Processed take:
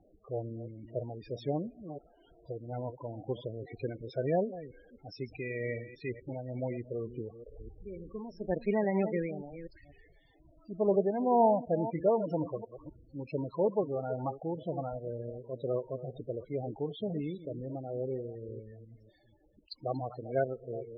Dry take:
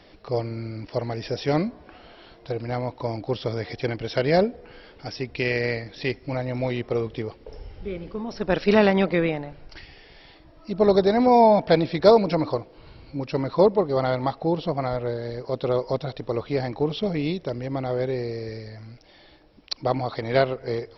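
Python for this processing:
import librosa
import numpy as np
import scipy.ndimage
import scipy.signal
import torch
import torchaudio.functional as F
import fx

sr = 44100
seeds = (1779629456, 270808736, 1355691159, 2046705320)

y = fx.reverse_delay(x, sr, ms=248, wet_db=-12.0)
y = y * (1.0 - 0.37 / 2.0 + 0.37 / 2.0 * np.cos(2.0 * np.pi * 2.1 * (np.arange(len(y)) / sr)))
y = fx.spec_topn(y, sr, count=16)
y = y * 10.0 ** (-8.5 / 20.0)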